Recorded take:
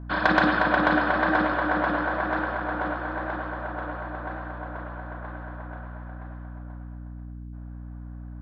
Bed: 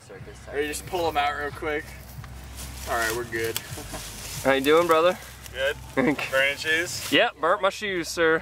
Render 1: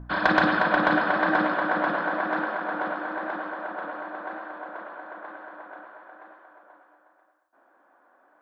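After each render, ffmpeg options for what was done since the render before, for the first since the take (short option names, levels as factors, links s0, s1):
-af "bandreject=f=60:t=h:w=4,bandreject=f=120:t=h:w=4,bandreject=f=180:t=h:w=4,bandreject=f=240:t=h:w=4,bandreject=f=300:t=h:w=4"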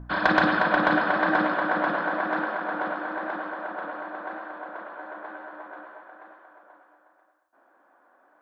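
-filter_complex "[0:a]asettb=1/sr,asplit=3[s0][s1][s2];[s0]atrim=end=4.974[s3];[s1]atrim=start=4.97:end=6.01,asetpts=PTS-STARTPTS,afade=t=in:d=0.004:c=qsin,afade=t=out:st=1.036:d=0.004:c=qsin,asplit=2[s4][s5];[s5]adelay=13,volume=0.501[s6];[s4][s6]amix=inputs=2:normalize=0,atrim=end_sample=45864[s7];[s2]atrim=start=6.006[s8];[s3][s7]acrossfade=d=0.004:c1=hsin:c2=qsin[s9];[s9][s8]acrossfade=d=0.004:c1=qsin:c2=hsin"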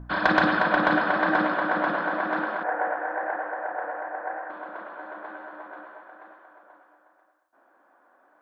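-filter_complex "[0:a]asettb=1/sr,asplit=3[s0][s1][s2];[s0]atrim=end=2.634[s3];[s1]atrim=start=2.63:end=4.5,asetpts=PTS-STARTPTS,afade=t=in:d=0.004:c=qsin,afade=t=out:st=1.866:d=0.004:c=qsin,highpass=470,equalizer=f=480:t=q:w=4:g=8,equalizer=f=760:t=q:w=4:g=7,equalizer=f=1200:t=q:w=4:g=-6,equalizer=f=1800:t=q:w=4:g=6,lowpass=f=2100:w=0.5412,lowpass=f=2100:w=1.3066[s4];[s2]atrim=start=4.496[s5];[s3][s4]acrossfade=d=0.004:c1=hsin:c2=qsin[s6];[s6][s5]acrossfade=d=0.004:c1=qsin:c2=hsin"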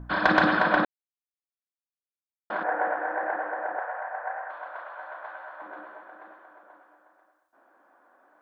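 -filter_complex "[0:a]asettb=1/sr,asplit=3[s0][s1][s2];[s0]atrim=end=3.794[s3];[s1]atrim=start=3.79:end=5.62,asetpts=PTS-STARTPTS,afade=t=in:d=0.004:c=qsin,afade=t=out:st=1.826:d=0.004:c=qsin,highpass=f=590:w=0.5412,highpass=f=590:w=1.3066[s4];[s2]atrim=start=5.616[s5];[s3][s4]acrossfade=d=0.004:c1=hsin:c2=qsin[s6];[s6][s5]acrossfade=d=0.004:c1=qsin:c2=hsin,asplit=3[s7][s8][s9];[s7]atrim=end=0.85,asetpts=PTS-STARTPTS,afade=t=out:st=0.846:d=0.004:c=hsin[s10];[s8]atrim=start=0.85:end=2.5,asetpts=PTS-STARTPTS,volume=0[s11];[s9]atrim=start=2.5,asetpts=PTS-STARTPTS,afade=t=in:d=0.004:c=hsin[s12];[s10][s11][s12]concat=n=3:v=0:a=1"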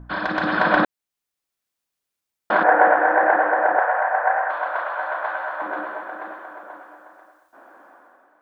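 -af "alimiter=limit=0.237:level=0:latency=1:release=428,dynaudnorm=f=140:g=9:m=5.01"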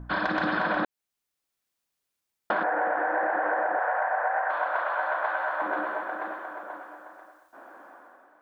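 -af "alimiter=limit=0.251:level=0:latency=1:release=49,acompressor=threshold=0.0708:ratio=6"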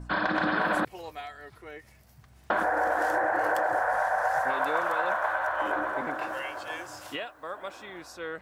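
-filter_complex "[1:a]volume=0.158[s0];[0:a][s0]amix=inputs=2:normalize=0"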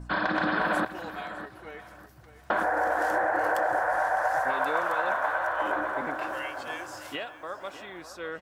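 -filter_complex "[0:a]asplit=2[s0][s1];[s1]adelay=606,lowpass=f=5000:p=1,volume=0.224,asplit=2[s2][s3];[s3]adelay=606,lowpass=f=5000:p=1,volume=0.29,asplit=2[s4][s5];[s5]adelay=606,lowpass=f=5000:p=1,volume=0.29[s6];[s0][s2][s4][s6]amix=inputs=4:normalize=0"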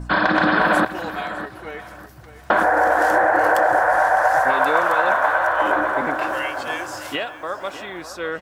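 -af "volume=2.99"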